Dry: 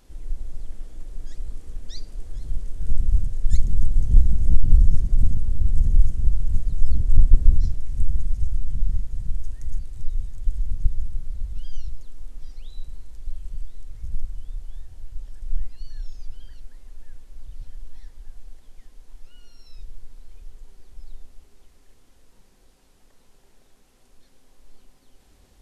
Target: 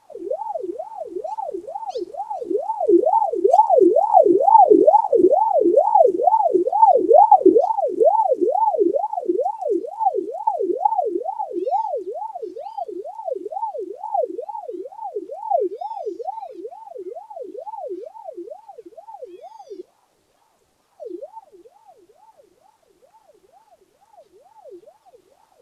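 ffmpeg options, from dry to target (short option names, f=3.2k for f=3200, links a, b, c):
-filter_complex "[0:a]asettb=1/sr,asplit=3[a][b][c];[a]atrim=end=19.814[d];[b]atrim=start=19.81:end=21,asetpts=PTS-STARTPTS,afade=t=in:d=0.004:c=qsin,afade=t=out:st=1.186:d=0.004:c=qsin,highpass=110[e];[c]atrim=start=20.996[f];[d][e]acrossfade=d=0.004:c1=hsin:c2=qsin[g];[g][f]acrossfade=d=0.004:c1=qsin:c2=hsin,aeval=exprs='val(0)*sin(2*PI*620*n/s+620*0.45/2.2*sin(2*PI*2.2*n/s))':c=same"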